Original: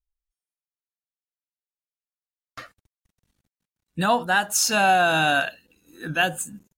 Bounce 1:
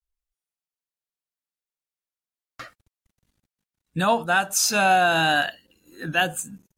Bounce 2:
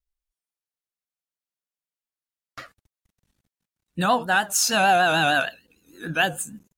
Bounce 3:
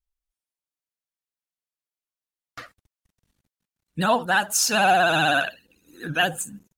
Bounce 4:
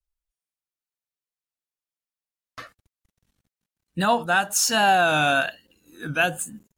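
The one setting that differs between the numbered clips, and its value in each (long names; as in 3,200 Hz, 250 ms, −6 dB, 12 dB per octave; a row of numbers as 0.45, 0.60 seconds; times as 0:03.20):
pitch vibrato, speed: 0.4, 6.6, 16, 1.1 Hertz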